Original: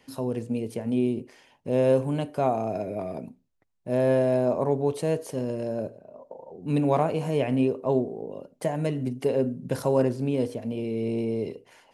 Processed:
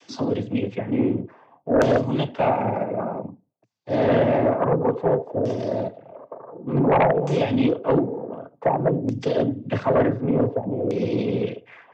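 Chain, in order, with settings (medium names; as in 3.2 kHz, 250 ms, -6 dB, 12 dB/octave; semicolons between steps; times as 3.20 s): noise-vocoded speech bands 16; LFO low-pass saw down 0.55 Hz 600–6200 Hz; sine folder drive 7 dB, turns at -6 dBFS; trim -6 dB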